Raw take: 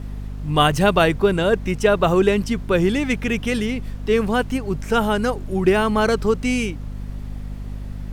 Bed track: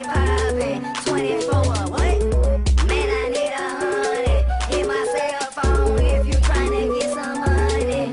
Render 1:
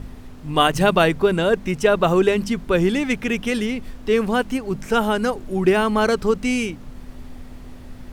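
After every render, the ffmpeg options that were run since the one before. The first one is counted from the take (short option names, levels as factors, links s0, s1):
-af "bandreject=f=50:t=h:w=4,bandreject=f=100:t=h:w=4,bandreject=f=150:t=h:w=4,bandreject=f=200:t=h:w=4"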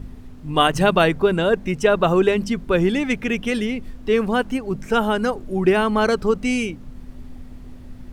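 -af "afftdn=nr=6:nf=-39"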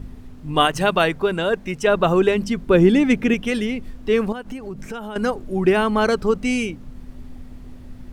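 -filter_complex "[0:a]asettb=1/sr,asplit=3[s0][s1][s2];[s0]atrim=end=0.654[s3];[s1]atrim=start=0.65:end=1.87,asetpts=PTS-STARTPTS,afade=t=in:d=0.004:c=qsin,afade=t=out:st=1.216:d=0.004:c=qsin,lowshelf=f=460:g=-5.5[s4];[s2]atrim=start=1.866[s5];[s3][s4]acrossfade=d=0.004:c1=hsin:c2=qsin[s6];[s6][s5]acrossfade=d=0.004:c1=qsin:c2=hsin,asettb=1/sr,asplit=3[s7][s8][s9];[s7]atrim=end=2.694[s10];[s8]atrim=start=2.69:end=3.34,asetpts=PTS-STARTPTS,afade=t=in:d=0.004:c=qsin,afade=t=out:st=0.646:d=0.004:c=qsin,equalizer=f=270:t=o:w=1.9:g=6.5[s11];[s9]atrim=start=3.336[s12];[s10][s11]acrossfade=d=0.004:c1=hsin:c2=qsin[s13];[s13][s12]acrossfade=d=0.004:c1=qsin:c2=hsin,asettb=1/sr,asplit=3[s14][s15][s16];[s14]atrim=end=4.324[s17];[s15]atrim=start=4.32:end=5.16,asetpts=PTS-STARTPTS,afade=t=in:d=0.004:c=qsin,afade=t=out:st=0.836:d=0.004:c=qsin,acompressor=threshold=0.0447:ratio=8:attack=3.2:release=140:knee=1:detection=peak[s18];[s16]atrim=start=5.156[s19];[s17][s18]acrossfade=d=0.004:c1=hsin:c2=qsin[s20];[s20][s19]acrossfade=d=0.004:c1=qsin:c2=hsin"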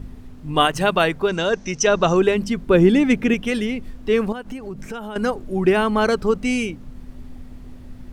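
-filter_complex "[0:a]asettb=1/sr,asplit=3[s0][s1][s2];[s0]atrim=end=1.284[s3];[s1]atrim=start=1.28:end=2.17,asetpts=PTS-STARTPTS,afade=t=in:d=0.004:c=qsin,afade=t=out:st=0.886:d=0.004:c=qsin,lowpass=f=6000:t=q:w=7.3[s4];[s2]atrim=start=2.166[s5];[s3][s4]acrossfade=d=0.004:c1=hsin:c2=qsin[s6];[s6][s5]acrossfade=d=0.004:c1=qsin:c2=hsin"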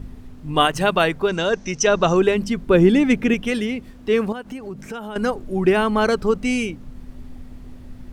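-filter_complex "[0:a]asettb=1/sr,asplit=3[s0][s1][s2];[s0]atrim=end=3.544[s3];[s1]atrim=start=3.54:end=5.1,asetpts=PTS-STARTPTS,afade=t=in:d=0.004:c=qsin,afade=t=out:st=1.556:d=0.004:c=qsin,highpass=f=72:p=1[s4];[s2]atrim=start=5.096[s5];[s3][s4]acrossfade=d=0.004:c1=hsin:c2=qsin[s6];[s6][s5]acrossfade=d=0.004:c1=qsin:c2=hsin"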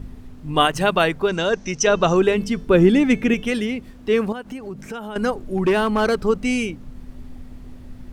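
-filter_complex "[0:a]asettb=1/sr,asplit=3[s0][s1][s2];[s0]atrim=end=1.844[s3];[s1]atrim=start=1.84:end=3.43,asetpts=PTS-STARTPTS,afade=t=in:d=0.004:c=qsin,afade=t=out:st=1.586:d=0.004:c=qsin,bandreject=f=438.8:t=h:w=4,bandreject=f=877.6:t=h:w=4,bandreject=f=1316.4:t=h:w=4,bandreject=f=1755.2:t=h:w=4,bandreject=f=2194:t=h:w=4,bandreject=f=2632.8:t=h:w=4,bandreject=f=3071.6:t=h:w=4,bandreject=f=3510.4:t=h:w=4,bandreject=f=3949.2:t=h:w=4,bandreject=f=4388:t=h:w=4,bandreject=f=4826.8:t=h:w=4,bandreject=f=5265.6:t=h:w=4,bandreject=f=5704.4:t=h:w=4,bandreject=f=6143.2:t=h:w=4,bandreject=f=6582:t=h:w=4,bandreject=f=7020.8:t=h:w=4,bandreject=f=7459.6:t=h:w=4,bandreject=f=7898.4:t=h:w=4,bandreject=f=8337.2:t=h:w=4,bandreject=f=8776:t=h:w=4,bandreject=f=9214.8:t=h:w=4,bandreject=f=9653.6:t=h:w=4,bandreject=f=10092.4:t=h:w=4,bandreject=f=10531.2:t=h:w=4,bandreject=f=10970:t=h:w=4,bandreject=f=11408.8:t=h:w=4,bandreject=f=11847.6:t=h:w=4,bandreject=f=12286.4:t=h:w=4,bandreject=f=12725.2:t=h:w=4,bandreject=f=13164:t=h:w=4,bandreject=f=13602.8:t=h:w=4,bandreject=f=14041.6:t=h:w=4,bandreject=f=14480.4:t=h:w=4,bandreject=f=14919.2:t=h:w=4,bandreject=f=15358:t=h:w=4,bandreject=f=15796.8:t=h:w=4,bandreject=f=16235.6:t=h:w=4[s4];[s2]atrim=start=3.426[s5];[s3][s4]acrossfade=d=0.004:c1=hsin:c2=qsin[s6];[s6][s5]acrossfade=d=0.004:c1=qsin:c2=hsin,asettb=1/sr,asplit=3[s7][s8][s9];[s7]atrim=end=5.404[s10];[s8]atrim=start=5.4:end=6.25,asetpts=PTS-STARTPTS,afade=t=in:d=0.004:c=qsin,afade=t=out:st=0.846:d=0.004:c=qsin,asoftclip=type=hard:threshold=0.224[s11];[s9]atrim=start=6.246[s12];[s10][s11]acrossfade=d=0.004:c1=hsin:c2=qsin[s13];[s13][s12]acrossfade=d=0.004:c1=qsin:c2=hsin"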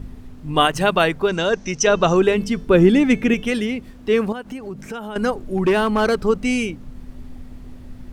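-af "volume=1.12,alimiter=limit=0.794:level=0:latency=1"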